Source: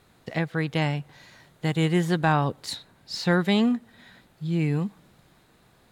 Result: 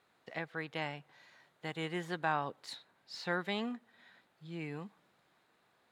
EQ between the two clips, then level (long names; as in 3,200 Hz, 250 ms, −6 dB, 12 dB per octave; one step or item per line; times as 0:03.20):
high-pass filter 840 Hz 6 dB per octave
high-shelf EQ 4,100 Hz −12 dB
−6.0 dB